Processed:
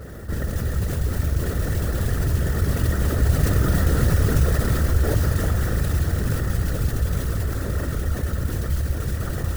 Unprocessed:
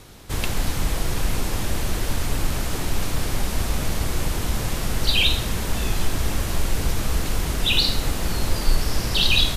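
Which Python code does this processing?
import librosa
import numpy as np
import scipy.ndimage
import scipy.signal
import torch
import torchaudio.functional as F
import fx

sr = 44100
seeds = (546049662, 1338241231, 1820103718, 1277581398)

y = fx.lower_of_two(x, sr, delay_ms=0.52)
y = fx.doppler_pass(y, sr, speed_mps=15, closest_m=12.0, pass_at_s=3.91)
y = scipy.signal.sosfilt(scipy.signal.cheby1(6, 9, 1900.0, 'lowpass', fs=sr, output='sos'), y)
y = y + 10.0 ** (-5.0 / 20.0) * np.pad(y, (int(352 * sr / 1000.0), 0))[:len(y)]
y = fx.mod_noise(y, sr, seeds[0], snr_db=13)
y = fx.whisperise(y, sr, seeds[1])
y = fx.peak_eq(y, sr, hz=70.0, db=12.5, octaves=1.2)
y = fx.env_flatten(y, sr, amount_pct=50)
y = y * 10.0 ** (6.0 / 20.0)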